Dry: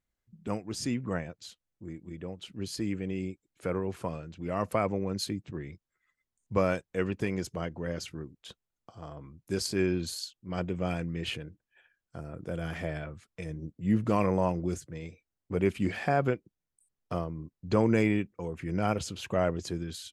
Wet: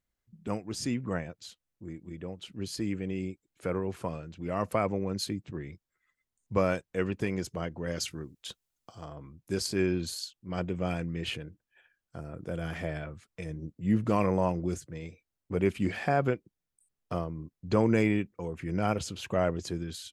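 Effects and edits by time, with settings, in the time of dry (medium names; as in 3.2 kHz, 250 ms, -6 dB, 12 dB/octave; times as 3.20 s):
7.87–9.05 s: treble shelf 2.8 kHz +9.5 dB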